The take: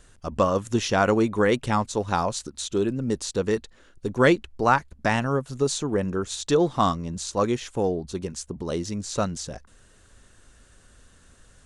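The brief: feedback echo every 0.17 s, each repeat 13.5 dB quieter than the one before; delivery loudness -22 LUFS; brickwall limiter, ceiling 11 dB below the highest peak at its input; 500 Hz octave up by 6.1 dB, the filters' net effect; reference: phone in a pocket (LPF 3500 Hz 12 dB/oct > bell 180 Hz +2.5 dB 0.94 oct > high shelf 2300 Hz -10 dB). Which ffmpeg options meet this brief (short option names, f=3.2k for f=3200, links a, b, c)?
-af "equalizer=f=500:t=o:g=7.5,alimiter=limit=-13dB:level=0:latency=1,lowpass=3.5k,equalizer=f=180:t=o:w=0.94:g=2.5,highshelf=f=2.3k:g=-10,aecho=1:1:170|340:0.211|0.0444,volume=3dB"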